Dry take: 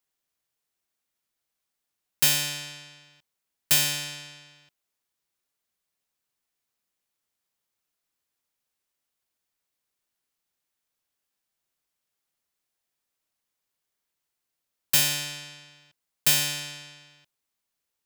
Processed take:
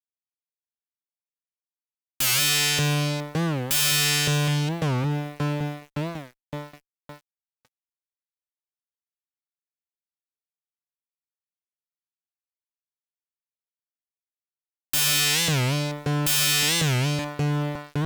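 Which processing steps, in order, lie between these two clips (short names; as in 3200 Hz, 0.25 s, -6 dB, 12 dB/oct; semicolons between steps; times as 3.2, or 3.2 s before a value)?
dark delay 0.563 s, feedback 67%, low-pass 530 Hz, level -3.5 dB; fuzz box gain 49 dB, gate -53 dBFS; record warp 45 rpm, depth 250 cents; gain -7 dB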